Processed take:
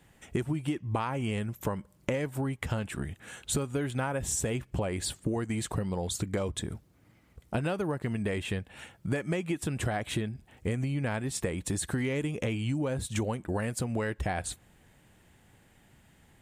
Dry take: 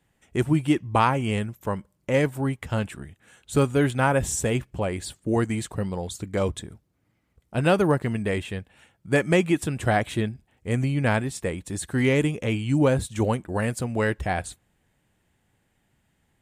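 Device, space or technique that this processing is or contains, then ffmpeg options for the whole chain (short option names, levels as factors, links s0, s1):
serial compression, leveller first: -af "acompressor=threshold=0.0501:ratio=2,acompressor=threshold=0.0141:ratio=6,volume=2.66"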